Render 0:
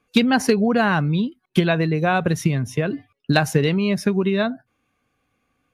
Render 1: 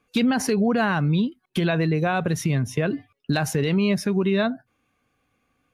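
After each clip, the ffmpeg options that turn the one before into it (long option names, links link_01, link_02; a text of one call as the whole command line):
ffmpeg -i in.wav -af "alimiter=limit=-13dB:level=0:latency=1:release=47" out.wav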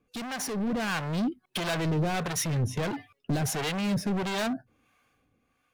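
ffmpeg -i in.wav -filter_complex "[0:a]asoftclip=type=hard:threshold=-29.5dB,acrossover=split=600[link_01][link_02];[link_01]aeval=exprs='val(0)*(1-0.7/2+0.7/2*cos(2*PI*1.5*n/s))':channel_layout=same[link_03];[link_02]aeval=exprs='val(0)*(1-0.7/2-0.7/2*cos(2*PI*1.5*n/s))':channel_layout=same[link_04];[link_03][link_04]amix=inputs=2:normalize=0,dynaudnorm=framelen=110:gausssize=13:maxgain=6dB" out.wav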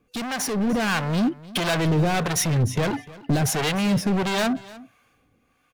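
ffmpeg -i in.wav -af "aecho=1:1:299:0.106,volume=6.5dB" out.wav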